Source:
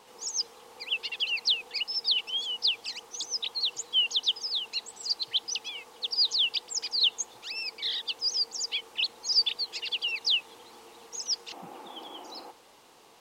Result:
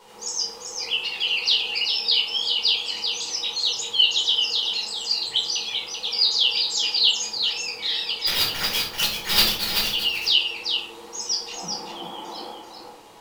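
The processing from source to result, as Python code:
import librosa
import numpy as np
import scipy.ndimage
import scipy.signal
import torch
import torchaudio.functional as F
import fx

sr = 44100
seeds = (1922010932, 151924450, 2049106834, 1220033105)

p1 = fx.sample_hold(x, sr, seeds[0], rate_hz=8600.0, jitter_pct=20, at=(8.26, 9.86), fade=0.02)
p2 = p1 + fx.echo_single(p1, sr, ms=388, db=-5.5, dry=0)
y = fx.room_shoebox(p2, sr, seeds[1], volume_m3=610.0, walls='furnished', distance_m=4.6)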